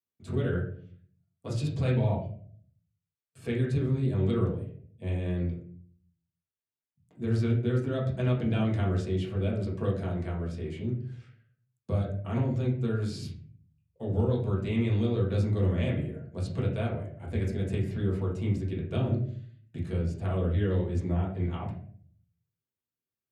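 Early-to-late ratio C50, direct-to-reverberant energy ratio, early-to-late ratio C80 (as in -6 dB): 6.0 dB, -5.0 dB, 10.5 dB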